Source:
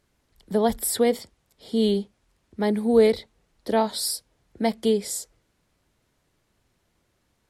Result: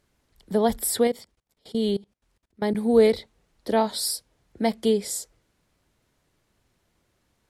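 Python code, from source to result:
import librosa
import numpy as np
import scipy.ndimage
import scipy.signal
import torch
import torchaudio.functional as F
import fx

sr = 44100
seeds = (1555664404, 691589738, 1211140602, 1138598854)

y = fx.level_steps(x, sr, step_db=23, at=(1.07, 2.75))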